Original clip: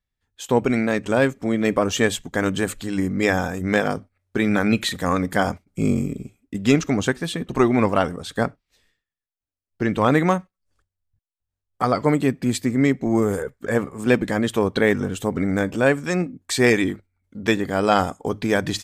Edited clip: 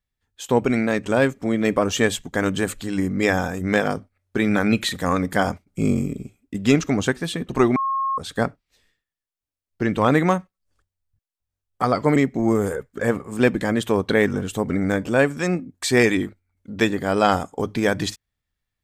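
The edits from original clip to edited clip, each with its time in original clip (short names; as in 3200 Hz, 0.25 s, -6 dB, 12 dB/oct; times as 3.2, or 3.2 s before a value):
7.76–8.18 bleep 1080 Hz -20 dBFS
12.16–12.83 cut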